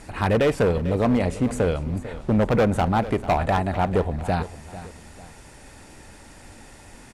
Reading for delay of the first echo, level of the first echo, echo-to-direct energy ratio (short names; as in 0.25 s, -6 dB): 0.446 s, -15.0 dB, -14.5 dB